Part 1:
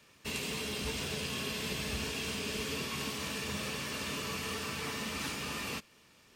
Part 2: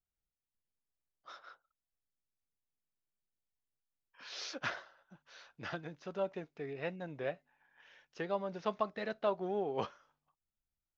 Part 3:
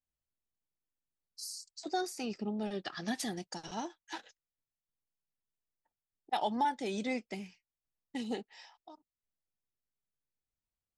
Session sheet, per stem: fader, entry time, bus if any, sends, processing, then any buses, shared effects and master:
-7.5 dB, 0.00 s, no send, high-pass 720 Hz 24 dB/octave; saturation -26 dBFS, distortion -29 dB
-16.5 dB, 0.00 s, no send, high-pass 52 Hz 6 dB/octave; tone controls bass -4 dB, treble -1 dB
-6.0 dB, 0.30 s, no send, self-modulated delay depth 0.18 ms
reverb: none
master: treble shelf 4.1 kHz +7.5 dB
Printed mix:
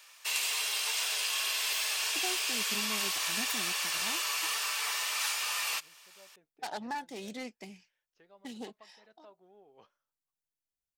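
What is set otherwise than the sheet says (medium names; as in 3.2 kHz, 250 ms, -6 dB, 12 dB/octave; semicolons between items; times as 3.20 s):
stem 1 -7.5 dB -> +4.0 dB; stem 2 -16.5 dB -> -23.5 dB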